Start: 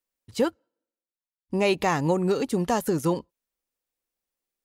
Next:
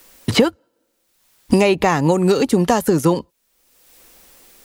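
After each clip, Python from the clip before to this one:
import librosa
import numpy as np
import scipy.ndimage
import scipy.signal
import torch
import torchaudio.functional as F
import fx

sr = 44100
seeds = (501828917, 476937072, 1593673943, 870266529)

y = fx.band_squash(x, sr, depth_pct=100)
y = y * 10.0 ** (8.5 / 20.0)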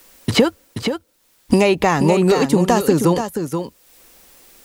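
y = x + 10.0 ** (-7.5 / 20.0) * np.pad(x, (int(480 * sr / 1000.0), 0))[:len(x)]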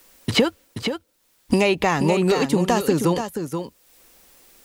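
y = fx.dynamic_eq(x, sr, hz=2900.0, q=0.96, threshold_db=-37.0, ratio=4.0, max_db=4)
y = y * 10.0 ** (-4.5 / 20.0)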